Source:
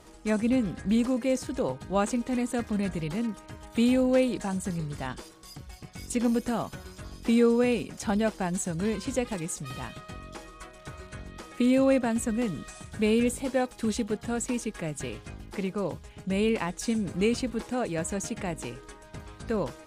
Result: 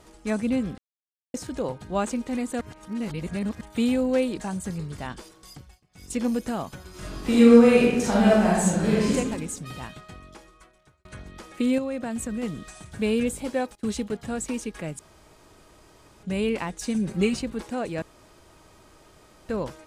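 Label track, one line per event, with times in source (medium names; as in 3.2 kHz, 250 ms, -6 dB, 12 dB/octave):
0.780000	1.340000	mute
2.610000	3.610000	reverse
5.560000	6.140000	dip -22 dB, fades 0.25 s
6.890000	9.150000	reverb throw, RT60 1.1 s, DRR -7.5 dB
9.890000	11.050000	fade out
11.780000	12.430000	compression 5:1, threshold -26 dBFS
13.750000	14.190000	gate -40 dBFS, range -19 dB
14.990000	16.230000	room tone
16.940000	17.390000	comb 5.3 ms, depth 76%
18.020000	19.490000	room tone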